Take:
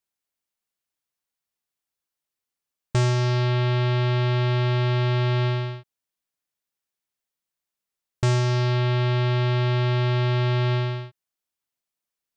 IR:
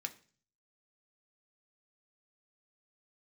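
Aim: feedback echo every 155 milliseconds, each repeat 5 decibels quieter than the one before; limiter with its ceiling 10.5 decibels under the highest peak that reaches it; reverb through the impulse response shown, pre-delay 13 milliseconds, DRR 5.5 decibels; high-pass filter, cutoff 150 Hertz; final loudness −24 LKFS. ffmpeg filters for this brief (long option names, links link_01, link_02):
-filter_complex "[0:a]highpass=150,alimiter=limit=-20dB:level=0:latency=1,aecho=1:1:155|310|465|620|775|930|1085:0.562|0.315|0.176|0.0988|0.0553|0.031|0.0173,asplit=2[link_01][link_02];[1:a]atrim=start_sample=2205,adelay=13[link_03];[link_02][link_03]afir=irnorm=-1:irlink=0,volume=-4.5dB[link_04];[link_01][link_04]amix=inputs=2:normalize=0,volume=8dB"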